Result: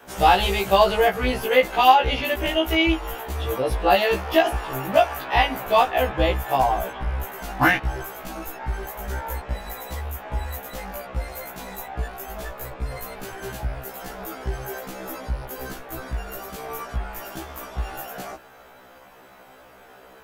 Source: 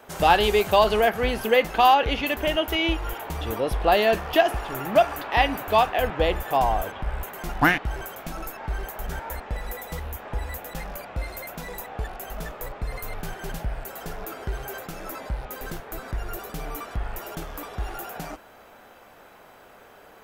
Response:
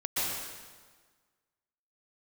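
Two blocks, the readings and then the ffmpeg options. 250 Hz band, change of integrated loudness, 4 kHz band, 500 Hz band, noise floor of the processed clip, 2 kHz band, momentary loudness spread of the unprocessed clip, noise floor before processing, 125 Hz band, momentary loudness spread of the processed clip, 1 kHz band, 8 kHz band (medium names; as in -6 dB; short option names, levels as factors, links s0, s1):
+2.0 dB, +2.0 dB, +1.5 dB, +1.0 dB, -49 dBFS, +1.5 dB, 16 LU, -50 dBFS, +2.5 dB, 16 LU, +2.0 dB, +1.5 dB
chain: -af "afftfilt=real='re*1.73*eq(mod(b,3),0)':imag='im*1.73*eq(mod(b,3),0)':win_size=2048:overlap=0.75,volume=1.58"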